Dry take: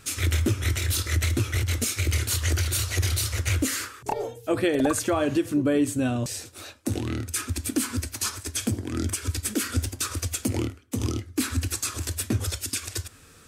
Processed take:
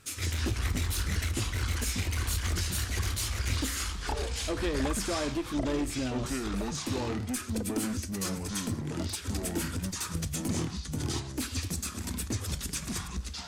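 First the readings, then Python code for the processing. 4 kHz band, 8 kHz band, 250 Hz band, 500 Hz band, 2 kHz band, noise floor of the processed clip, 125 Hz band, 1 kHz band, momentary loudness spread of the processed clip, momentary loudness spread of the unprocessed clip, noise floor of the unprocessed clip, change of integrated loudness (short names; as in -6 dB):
-3.5 dB, -6.0 dB, -5.5 dB, -7.0 dB, -5.0 dB, -41 dBFS, -6.0 dB, -4.0 dB, 4 LU, 7 LU, -51 dBFS, -5.5 dB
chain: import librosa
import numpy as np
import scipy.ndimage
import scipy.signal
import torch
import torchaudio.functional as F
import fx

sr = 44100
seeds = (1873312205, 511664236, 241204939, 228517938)

y = fx.spec_box(x, sr, start_s=11.46, length_s=0.32, low_hz=850.0, high_hz=3900.0, gain_db=-9)
y = fx.clip_asym(y, sr, top_db=-22.5, bottom_db=-17.5)
y = fx.echo_pitch(y, sr, ms=131, semitones=-5, count=2, db_per_echo=-3.0)
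y = F.gain(torch.from_numpy(y), -7.0).numpy()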